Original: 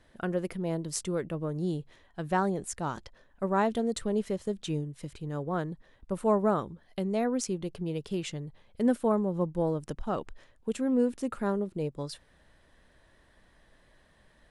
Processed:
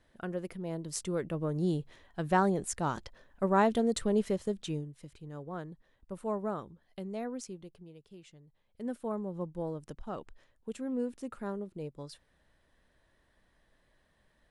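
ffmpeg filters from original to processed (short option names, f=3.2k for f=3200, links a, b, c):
-af "volume=12.5dB,afade=t=in:st=0.7:d=0.94:silence=0.446684,afade=t=out:st=4.28:d=0.74:silence=0.316228,afade=t=out:st=7.27:d=0.66:silence=0.298538,afade=t=in:st=8.46:d=0.81:silence=0.266073"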